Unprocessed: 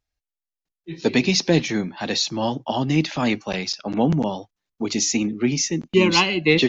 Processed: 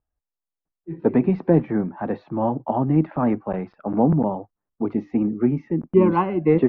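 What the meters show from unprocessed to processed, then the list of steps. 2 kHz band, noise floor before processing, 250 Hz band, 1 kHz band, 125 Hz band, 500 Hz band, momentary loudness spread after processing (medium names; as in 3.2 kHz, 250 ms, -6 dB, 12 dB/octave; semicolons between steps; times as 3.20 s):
-14.5 dB, under -85 dBFS, +1.5 dB, +1.0 dB, +1.5 dB, +1.5 dB, 10 LU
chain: low-pass 1.3 kHz 24 dB/octave; trim +1.5 dB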